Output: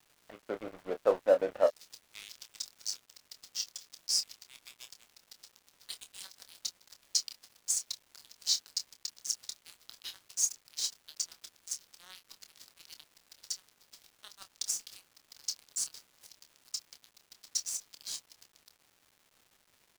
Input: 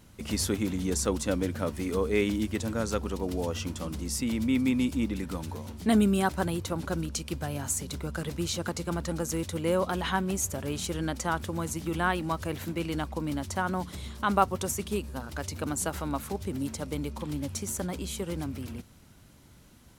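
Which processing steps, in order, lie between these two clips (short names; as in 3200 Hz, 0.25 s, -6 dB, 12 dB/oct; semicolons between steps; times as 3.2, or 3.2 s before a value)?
ladder band-pass 670 Hz, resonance 65%, from 1.66 s 5400 Hz; AGC gain up to 4.5 dB; crossover distortion -48.5 dBFS; doubler 27 ms -9 dB; crackle 530/s -61 dBFS; gain +8.5 dB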